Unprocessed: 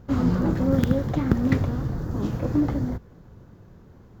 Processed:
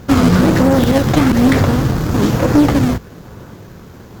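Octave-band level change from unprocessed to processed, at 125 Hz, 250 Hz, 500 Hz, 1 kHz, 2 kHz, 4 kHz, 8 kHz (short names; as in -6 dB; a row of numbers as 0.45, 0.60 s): +9.5 dB, +11.5 dB, +13.0 dB, +16.0 dB, +16.5 dB, +20.0 dB, n/a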